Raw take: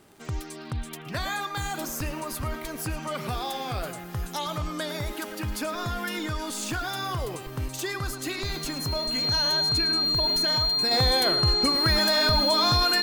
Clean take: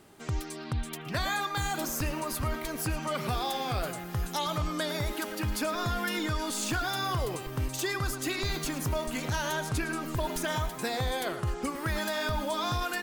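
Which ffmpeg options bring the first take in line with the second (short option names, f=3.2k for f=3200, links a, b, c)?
-af "adeclick=t=4,bandreject=f=4.2k:w=30,asetnsamples=n=441:p=0,asendcmd='10.91 volume volume -6.5dB',volume=0dB"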